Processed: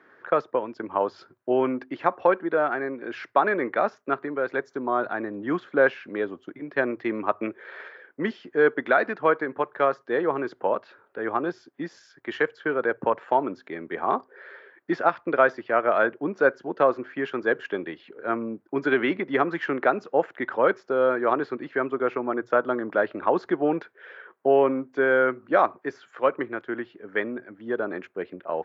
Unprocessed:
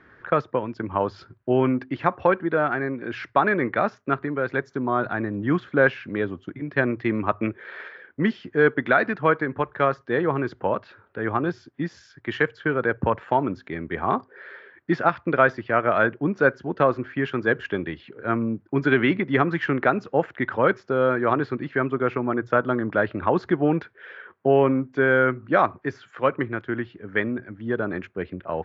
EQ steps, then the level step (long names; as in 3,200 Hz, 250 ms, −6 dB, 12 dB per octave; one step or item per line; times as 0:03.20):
Bessel high-pass filter 620 Hz, order 2
tilt shelving filter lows +8 dB
high-shelf EQ 4,300 Hz +9 dB
0.0 dB